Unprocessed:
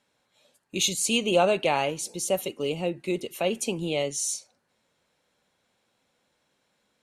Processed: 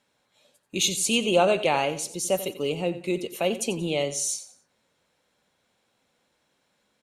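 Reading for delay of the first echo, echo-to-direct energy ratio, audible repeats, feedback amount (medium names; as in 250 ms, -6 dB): 90 ms, -13.5 dB, 3, 31%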